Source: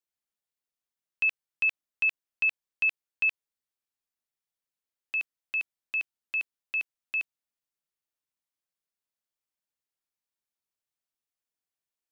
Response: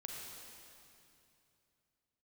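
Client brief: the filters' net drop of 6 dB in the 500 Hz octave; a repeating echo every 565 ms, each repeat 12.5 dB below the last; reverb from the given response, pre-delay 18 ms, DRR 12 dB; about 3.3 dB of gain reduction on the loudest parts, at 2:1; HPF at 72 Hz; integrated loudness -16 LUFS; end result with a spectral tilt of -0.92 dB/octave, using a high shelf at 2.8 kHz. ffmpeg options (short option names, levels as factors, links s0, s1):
-filter_complex "[0:a]highpass=72,equalizer=f=500:t=o:g=-7.5,highshelf=f=2800:g=-7.5,acompressor=threshold=0.0282:ratio=2,aecho=1:1:565|1130|1695:0.237|0.0569|0.0137,asplit=2[s0][s1];[1:a]atrim=start_sample=2205,adelay=18[s2];[s1][s2]afir=irnorm=-1:irlink=0,volume=0.316[s3];[s0][s3]amix=inputs=2:normalize=0,volume=7.94"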